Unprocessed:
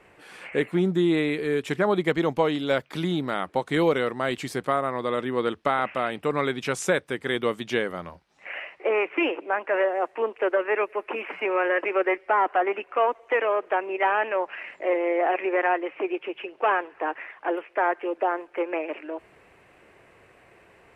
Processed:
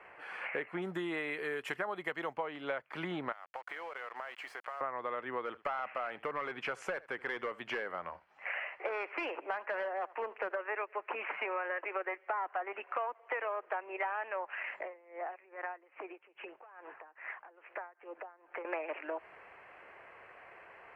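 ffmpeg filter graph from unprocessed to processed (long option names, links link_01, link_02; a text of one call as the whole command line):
ffmpeg -i in.wav -filter_complex "[0:a]asettb=1/sr,asplit=3[link_01][link_02][link_03];[link_01]atrim=end=0.824[link_04];[link_02]atrim=start=0.82:end=2.34,asetpts=PTS-STARTPTS,afade=type=in:duration=0.004:curve=qsin,afade=type=out:start_time=1.516:duration=0.004:curve=qsin,aemphasis=mode=production:type=75fm,bandreject=frequency=2300:width=17[link_05];[link_03]atrim=start=2.336[link_06];[link_04][link_05]acrossfade=duration=0.004:curve1=hsin:curve2=qsin[link_07];[link_07][link_06]acrossfade=duration=0.004:curve1=qsin:curve2=hsin,asettb=1/sr,asplit=3[link_08][link_09][link_10];[link_08]atrim=end=3.324[link_11];[link_09]atrim=start=3.32:end=4.81,asetpts=PTS-STARTPTS,afade=type=in:duration=0.004:curve=qsin,afade=type=out:start_time=1.486:duration=0.004:curve=qsin,highpass=610,acompressor=threshold=-39dB:ratio=20:attack=3.2:release=140:knee=1:detection=peak,acrusher=bits=7:mix=0:aa=0.5[link_12];[link_10]atrim=start=4.806[link_13];[link_11][link_12]acrossfade=duration=0.004:curve1=hsin:curve2=qsin[link_14];[link_14][link_13]acrossfade=duration=0.004:curve1=qsin:curve2=hsin,asettb=1/sr,asplit=3[link_15][link_16][link_17];[link_15]atrim=end=5.454[link_18];[link_16]atrim=start=5.45:end=10.55,asetpts=PTS-STARTPTS,afade=type=in:duration=0.004:curve=qsin,afade=type=out:start_time=5.096:duration=0.004:curve=qsin,volume=20.5dB,asoftclip=hard,volume=-20.5dB,aecho=1:1:76:0.0708,atrim=end_sample=224910[link_19];[link_17]atrim=start=10.546[link_20];[link_18][link_19]acrossfade=duration=0.004:curve1=hsin:curve2=qsin[link_21];[link_21][link_20]acrossfade=duration=0.004:curve1=qsin:curve2=hsin,asettb=1/sr,asplit=3[link_22][link_23][link_24];[link_22]atrim=end=14.824[link_25];[link_23]atrim=start=14.82:end=18.65,asetpts=PTS-STARTPTS,afade=type=in:duration=0.004:curve=qsin,afade=type=out:start_time=3.826:duration=0.004:curve=qsin,bass=frequency=250:gain=5,treble=frequency=4000:gain=-12,acompressor=threshold=-36dB:ratio=5:attack=3.2:release=140:knee=1:detection=peak,aeval=exprs='val(0)*pow(10,-22*(0.5-0.5*cos(2*PI*2.4*n/s))/20)':channel_layout=same[link_26];[link_24]atrim=start=18.646[link_27];[link_25][link_26]acrossfade=duration=0.004:curve1=hsin:curve2=qsin[link_28];[link_28][link_27]acrossfade=duration=0.004:curve1=qsin:curve2=hsin,acrossover=split=580 2600:gain=0.141 1 0.0708[link_29][link_30][link_31];[link_29][link_30][link_31]amix=inputs=3:normalize=0,bandreject=frequency=3700:width=6.2,acompressor=threshold=-39dB:ratio=6,volume=4.5dB" out.wav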